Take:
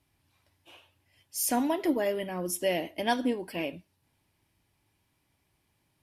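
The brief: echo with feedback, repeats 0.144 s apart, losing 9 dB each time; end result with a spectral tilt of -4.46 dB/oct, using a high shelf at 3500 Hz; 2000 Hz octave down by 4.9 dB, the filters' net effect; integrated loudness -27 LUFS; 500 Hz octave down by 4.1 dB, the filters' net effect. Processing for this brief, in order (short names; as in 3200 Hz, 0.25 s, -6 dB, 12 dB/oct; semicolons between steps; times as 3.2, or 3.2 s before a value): bell 500 Hz -5 dB; bell 2000 Hz -3.5 dB; high shelf 3500 Hz -8 dB; feedback echo 0.144 s, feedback 35%, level -9 dB; gain +5.5 dB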